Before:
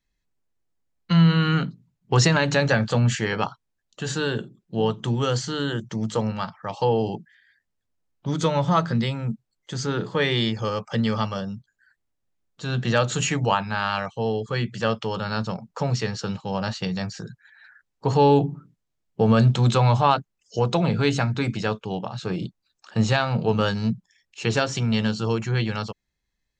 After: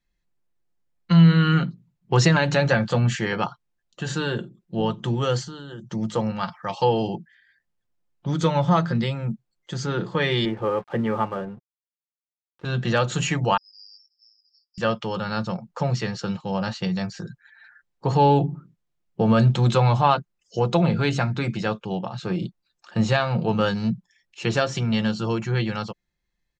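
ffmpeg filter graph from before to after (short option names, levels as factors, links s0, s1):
-filter_complex "[0:a]asettb=1/sr,asplit=3[s0][s1][s2];[s0]atrim=end=5.434[s3];[s1]atrim=start=5.43:end=5.92,asetpts=PTS-STARTPTS,afade=t=in:d=0.004:c=qsin,afade=t=out:st=0.486:d=0.004:c=qsin,acompressor=threshold=0.02:ratio=5:attack=3.2:release=140:knee=1:detection=peak,equalizer=f=2200:t=o:w=0.4:g=-13.5[s4];[s2]atrim=start=5.916[s5];[s3][s4]acrossfade=d=0.004:c1=hsin:c2=qsin[s6];[s6][s5]acrossfade=d=0.004:c1=qsin:c2=hsin,asettb=1/sr,asplit=3[s7][s8][s9];[s7]atrim=end=6.434[s10];[s8]atrim=start=6.43:end=7.07,asetpts=PTS-STARTPTS,afade=t=in:d=0.004:c=qsin,afade=t=out:st=0.636:d=0.004:c=qsin,highshelf=f=2200:g=9.5,acrossover=split=4600[s11][s12];[s12]acompressor=threshold=0.00501:ratio=4:attack=1:release=60[s13];[s11][s13]amix=inputs=2:normalize=0[s14];[s9]atrim=start=7.066[s15];[s10][s14]acrossfade=d=0.004:c1=hsin:c2=qsin[s16];[s16][s15]acrossfade=d=0.004:c1=qsin:c2=hsin,asettb=1/sr,asplit=3[s17][s18][s19];[s17]atrim=end=10.454[s20];[s18]atrim=start=10.45:end=12.65,asetpts=PTS-STARTPTS,afade=t=in:d=0.004:c=qsin,afade=t=out:st=2.196:d=0.004:c=qsin,highpass=110,equalizer=f=200:t=q:w=4:g=-5,equalizer=f=280:t=q:w=4:g=5,equalizer=f=400:t=q:w=4:g=9,equalizer=f=850:t=q:w=4:g=4,lowpass=f=2300:w=0.5412,lowpass=f=2300:w=1.3066,aeval=exprs='sgn(val(0))*max(abs(val(0))-0.00473,0)':c=same[s21];[s19]atrim=start=12.646[s22];[s20][s21]acrossfade=d=0.004:c1=hsin:c2=qsin[s23];[s23][s22]acrossfade=d=0.004:c1=qsin:c2=hsin,asettb=1/sr,asplit=3[s24][s25][s26];[s24]atrim=end=13.574[s27];[s25]atrim=start=13.57:end=14.78,asetpts=PTS-STARTPTS,afade=t=in:d=0.004:c=qsin,afade=t=out:st=1.206:d=0.004:c=qsin,acontrast=66,asuperpass=centerf=5100:order=12:qfactor=7[s28];[s26]atrim=start=14.776[s29];[s27][s28]acrossfade=d=0.004:c1=hsin:c2=qsin[s30];[s30][s29]acrossfade=d=0.004:c1=qsin:c2=hsin,highshelf=f=5400:g=-7,aecho=1:1:5.7:0.4"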